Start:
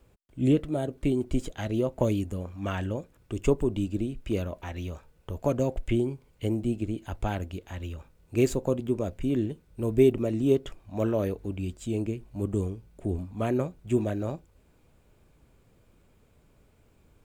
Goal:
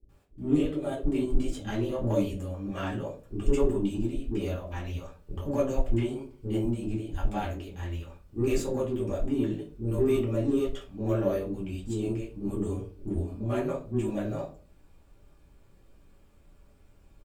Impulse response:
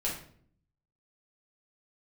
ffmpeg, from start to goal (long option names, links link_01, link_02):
-filter_complex "[0:a]lowshelf=frequency=95:gain=-5.5,acrossover=split=400[link_01][link_02];[link_02]adelay=90[link_03];[link_01][link_03]amix=inputs=2:normalize=0,asplit=2[link_04][link_05];[link_05]asoftclip=type=tanh:threshold=-29dB,volume=-5.5dB[link_06];[link_04][link_06]amix=inputs=2:normalize=0[link_07];[1:a]atrim=start_sample=2205,asetrate=83790,aresample=44100[link_08];[link_07][link_08]afir=irnorm=-1:irlink=0,volume=-3dB"